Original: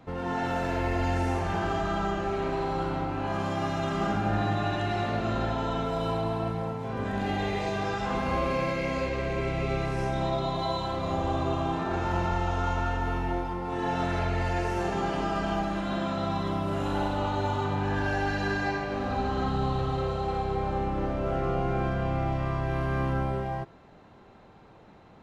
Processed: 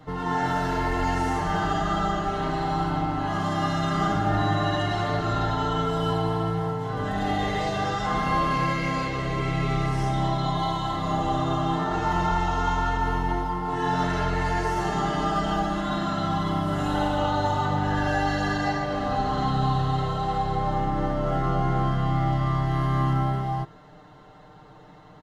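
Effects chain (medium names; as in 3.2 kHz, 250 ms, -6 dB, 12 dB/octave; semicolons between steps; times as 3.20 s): peaking EQ 320 Hz -3.5 dB 1.9 oct; band-stop 2.4 kHz, Q 5.2; comb 6.6 ms, depth 97%; trim +3 dB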